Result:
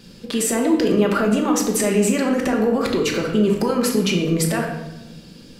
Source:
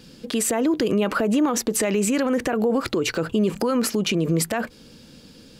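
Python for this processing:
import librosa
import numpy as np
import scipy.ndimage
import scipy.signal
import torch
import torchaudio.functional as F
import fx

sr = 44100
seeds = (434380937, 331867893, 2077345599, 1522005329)

y = fx.room_shoebox(x, sr, seeds[0], volume_m3=430.0, walls='mixed', distance_m=1.2)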